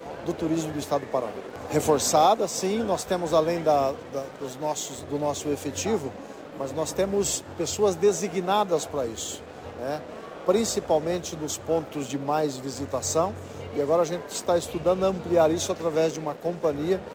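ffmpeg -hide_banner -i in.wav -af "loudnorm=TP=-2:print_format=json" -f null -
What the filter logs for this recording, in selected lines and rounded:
"input_i" : "-26.0",
"input_tp" : "-8.4",
"input_lra" : "3.2",
"input_thresh" : "-36.2",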